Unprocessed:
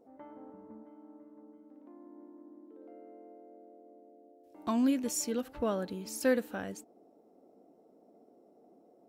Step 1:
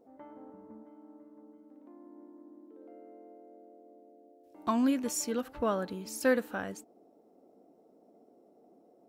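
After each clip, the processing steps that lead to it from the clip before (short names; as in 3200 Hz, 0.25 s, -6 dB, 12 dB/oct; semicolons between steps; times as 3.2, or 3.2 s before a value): dynamic EQ 1200 Hz, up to +6 dB, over -50 dBFS, Q 1.1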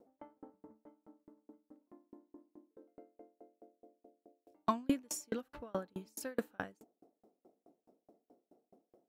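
dB-ramp tremolo decaying 4.7 Hz, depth 38 dB; gain +1.5 dB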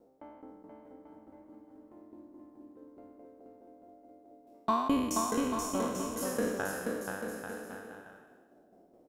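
spectral trails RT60 1.26 s; on a send: bouncing-ball echo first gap 0.48 s, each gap 0.75×, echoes 5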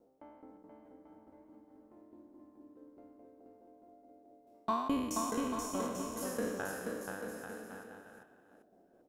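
reverse delay 0.392 s, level -13 dB; gain -4.5 dB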